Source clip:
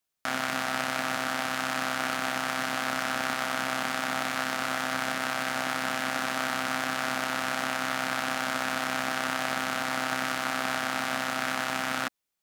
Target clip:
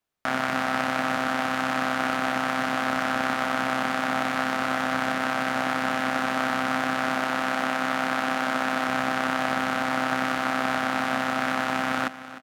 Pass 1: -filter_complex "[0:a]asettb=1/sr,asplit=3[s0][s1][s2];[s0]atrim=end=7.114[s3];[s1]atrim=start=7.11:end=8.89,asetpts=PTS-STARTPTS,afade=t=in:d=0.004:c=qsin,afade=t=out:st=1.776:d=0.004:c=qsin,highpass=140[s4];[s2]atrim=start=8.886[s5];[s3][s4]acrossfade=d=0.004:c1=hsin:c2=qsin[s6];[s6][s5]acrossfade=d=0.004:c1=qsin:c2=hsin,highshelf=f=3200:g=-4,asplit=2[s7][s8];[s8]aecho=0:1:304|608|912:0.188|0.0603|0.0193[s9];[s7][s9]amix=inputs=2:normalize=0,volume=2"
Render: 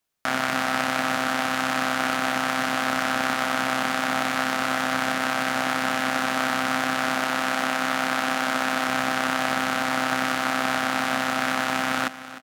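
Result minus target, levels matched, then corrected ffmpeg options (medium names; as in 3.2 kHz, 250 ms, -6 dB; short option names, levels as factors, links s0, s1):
8 kHz band +5.5 dB
-filter_complex "[0:a]asettb=1/sr,asplit=3[s0][s1][s2];[s0]atrim=end=7.114[s3];[s1]atrim=start=7.11:end=8.89,asetpts=PTS-STARTPTS,afade=t=in:d=0.004:c=qsin,afade=t=out:st=1.776:d=0.004:c=qsin,highpass=140[s4];[s2]atrim=start=8.886[s5];[s3][s4]acrossfade=d=0.004:c1=hsin:c2=qsin[s6];[s6][s5]acrossfade=d=0.004:c1=qsin:c2=hsin,highshelf=f=3200:g=-12.5,asplit=2[s7][s8];[s8]aecho=0:1:304|608|912:0.188|0.0603|0.0193[s9];[s7][s9]amix=inputs=2:normalize=0,volume=2"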